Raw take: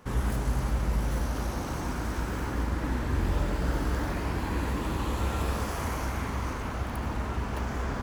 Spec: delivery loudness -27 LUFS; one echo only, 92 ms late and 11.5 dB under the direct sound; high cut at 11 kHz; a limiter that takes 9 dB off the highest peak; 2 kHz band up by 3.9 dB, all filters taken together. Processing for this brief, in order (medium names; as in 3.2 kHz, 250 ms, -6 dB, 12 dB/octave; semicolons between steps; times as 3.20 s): low-pass 11 kHz; peaking EQ 2 kHz +5 dB; peak limiter -25 dBFS; delay 92 ms -11.5 dB; trim +7 dB